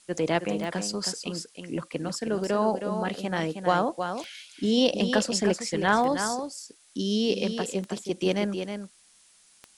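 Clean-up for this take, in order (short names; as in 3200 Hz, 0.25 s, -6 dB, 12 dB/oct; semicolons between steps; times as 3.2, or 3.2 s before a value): de-click; denoiser 13 dB, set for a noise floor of -59 dBFS; inverse comb 0.317 s -7.5 dB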